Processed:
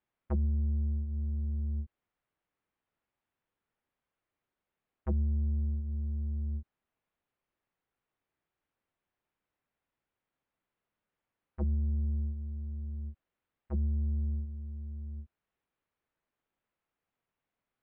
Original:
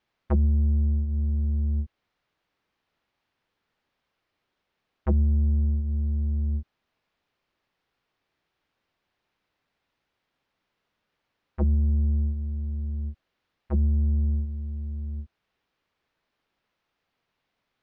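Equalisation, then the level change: air absorption 300 m; -8.0 dB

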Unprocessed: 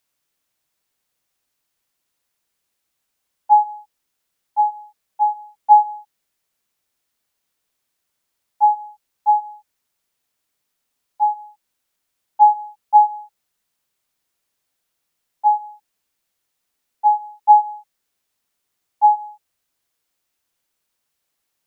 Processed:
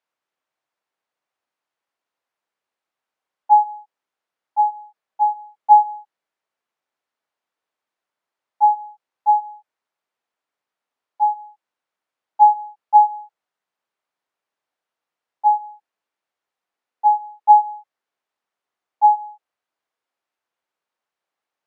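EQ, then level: band-pass 870 Hz, Q 0.72; 0.0 dB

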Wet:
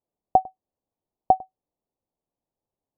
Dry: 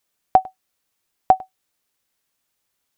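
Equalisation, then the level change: inverse Chebyshev low-pass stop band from 1700 Hz, stop band 40 dB; -2.0 dB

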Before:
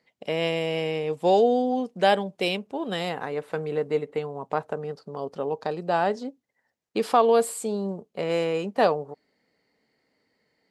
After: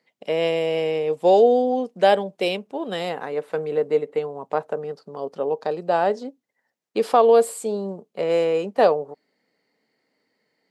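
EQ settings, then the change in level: HPF 160 Hz; dynamic EQ 520 Hz, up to +6 dB, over -34 dBFS, Q 1.4; 0.0 dB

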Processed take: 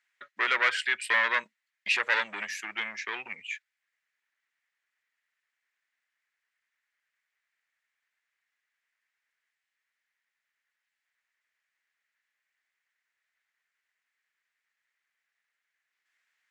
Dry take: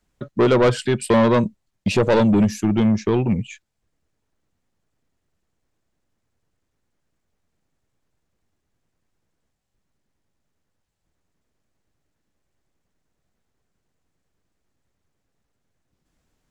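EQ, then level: resonant high-pass 1900 Hz, resonance Q 3.4; high shelf 3800 Hz -10.5 dB; 0.0 dB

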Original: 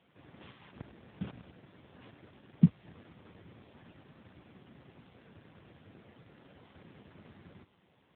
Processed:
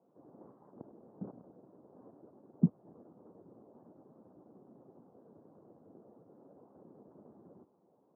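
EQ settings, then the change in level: HPF 300 Hz 12 dB/oct; Bessel low-pass 580 Hz, order 8; +5.0 dB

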